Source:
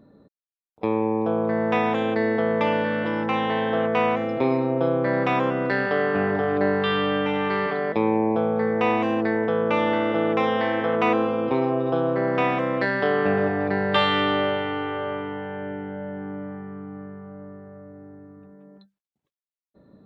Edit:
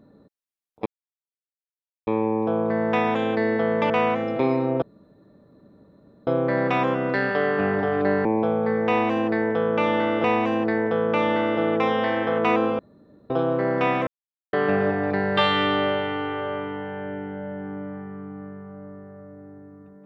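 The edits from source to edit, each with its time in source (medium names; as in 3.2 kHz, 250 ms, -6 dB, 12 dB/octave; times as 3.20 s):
0.86 s: insert silence 1.21 s
2.69–3.91 s: delete
4.83 s: insert room tone 1.45 s
6.81–8.18 s: delete
8.81–10.17 s: loop, 2 plays
11.36–11.87 s: room tone
12.64–13.10 s: mute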